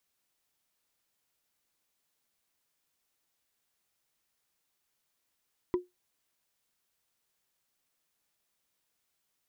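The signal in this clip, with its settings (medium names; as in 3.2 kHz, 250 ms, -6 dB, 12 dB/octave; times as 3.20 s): wood hit, lowest mode 359 Hz, decay 0.18 s, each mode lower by 10 dB, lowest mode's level -21 dB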